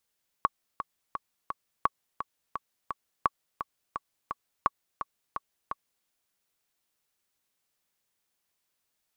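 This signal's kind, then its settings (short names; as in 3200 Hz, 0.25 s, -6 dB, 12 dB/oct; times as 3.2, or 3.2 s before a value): metronome 171 bpm, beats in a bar 4, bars 4, 1120 Hz, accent 10 dB -9 dBFS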